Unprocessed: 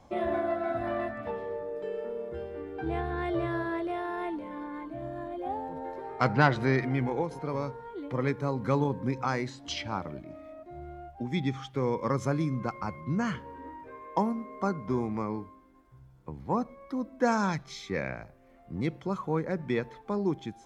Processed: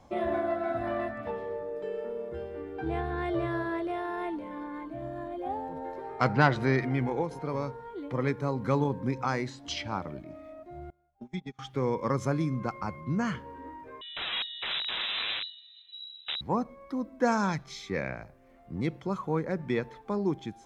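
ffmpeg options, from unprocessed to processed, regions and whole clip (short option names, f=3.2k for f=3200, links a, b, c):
-filter_complex "[0:a]asettb=1/sr,asplit=3[a][b][c];[a]atrim=end=10.904[d];[b]atrim=start=10.9:end=11.59,asetpts=PTS-STARTPTS,afade=t=in:d=0.004:c=qsin,afade=t=out:st=0.686:d=0.004:c=qsin,acrossover=split=92|2000[e][f][g];[e]acompressor=threshold=-51dB:ratio=4[h];[f]acompressor=threshold=-36dB:ratio=4[i];[g]acompressor=threshold=-50dB:ratio=4[j];[h][i][j]amix=inputs=3:normalize=0,agate=range=-26dB:threshold=-36dB:ratio=16:release=100:detection=peak,aecho=1:1:4.8:0.67,atrim=end_sample=30429[k];[c]atrim=start=11.586[l];[d][k]acrossfade=d=0.004:c1=hsin:c2=qsin[m];[m][l]acrossfade=d=0.004:c1=qsin:c2=hsin,asettb=1/sr,asplit=3[n][o][p];[n]atrim=end=14.014[q];[o]atrim=start=14.01:end=16.41,asetpts=PTS-STARTPTS,afade=t=in:d=0.004:c=qsin,afade=t=out:st=2.396:d=0.004:c=qsin,lowshelf=f=300:g=11,aeval=exprs='(mod(22.4*val(0)+1,2)-1)/22.4':c=same,lowpass=f=3.4k:t=q:w=0.5098,lowpass=f=3.4k:t=q:w=0.6013,lowpass=f=3.4k:t=q:w=0.9,lowpass=f=3.4k:t=q:w=2.563,afreqshift=-4000[r];[p]atrim=start=16.406[s];[q][r]acrossfade=d=0.004:c1=hsin:c2=qsin[t];[t][s]acrossfade=d=0.004:c1=qsin:c2=hsin"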